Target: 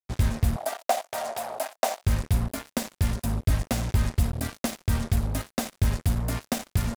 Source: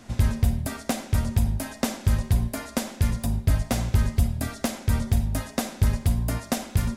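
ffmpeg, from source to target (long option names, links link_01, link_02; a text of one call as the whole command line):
ffmpeg -i in.wav -filter_complex "[0:a]acrusher=bits=4:mix=0:aa=0.5,asettb=1/sr,asplit=3[link_01][link_02][link_03];[link_01]atrim=end=0.564[link_04];[link_02]atrim=start=0.56:end=2.03,asetpts=PTS-STARTPTS,afade=type=in:duration=0.004:curve=qsin,afade=type=out:start_time=1.466:duration=0.004:curve=qsin,highpass=frequency=680:width_type=q:width=4.9[link_05];[link_03]atrim=start=2.026[link_06];[link_04][link_05]acrossfade=duration=0.004:curve1=hsin:curve2=qsin[link_07];[link_07][link_06]acrossfade=duration=0.004:curve1=qsin:curve2=hsin,volume=-2dB" out.wav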